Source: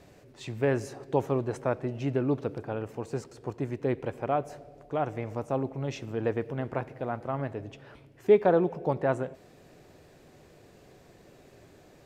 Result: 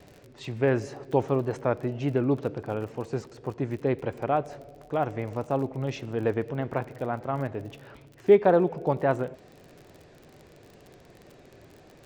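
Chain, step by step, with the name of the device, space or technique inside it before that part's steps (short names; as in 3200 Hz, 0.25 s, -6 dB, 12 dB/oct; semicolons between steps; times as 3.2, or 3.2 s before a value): lo-fi chain (LPF 5900 Hz 12 dB/oct; wow and flutter; crackle 42/s -41 dBFS); gain +2.5 dB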